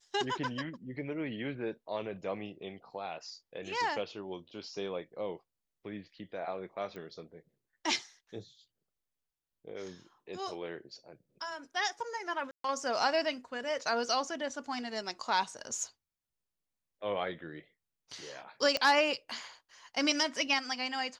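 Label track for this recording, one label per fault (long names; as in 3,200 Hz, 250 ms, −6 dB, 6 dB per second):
6.960000	6.960000	click −32 dBFS
12.510000	12.640000	drop-out 133 ms
18.770000	18.770000	click −16 dBFS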